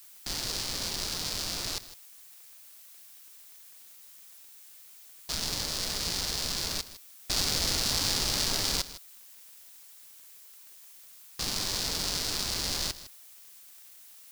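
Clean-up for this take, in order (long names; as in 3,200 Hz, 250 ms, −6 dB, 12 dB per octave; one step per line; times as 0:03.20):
click removal
noise reduction from a noise print 26 dB
echo removal 157 ms −15.5 dB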